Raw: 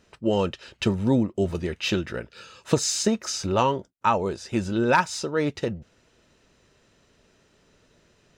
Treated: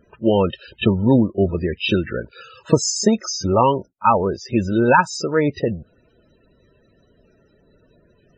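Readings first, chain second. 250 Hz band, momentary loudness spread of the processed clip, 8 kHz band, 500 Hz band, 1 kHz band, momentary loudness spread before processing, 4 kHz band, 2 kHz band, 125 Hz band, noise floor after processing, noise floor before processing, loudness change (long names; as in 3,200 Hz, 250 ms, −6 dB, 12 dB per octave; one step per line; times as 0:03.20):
+6.5 dB, 9 LU, +3.5 dB, +6.5 dB, +6.5 dB, 10 LU, +3.0 dB, +5.0 dB, +6.5 dB, −59 dBFS, −63 dBFS, +6.0 dB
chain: spectral peaks only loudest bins 32
backwards echo 32 ms −21 dB
level +6.5 dB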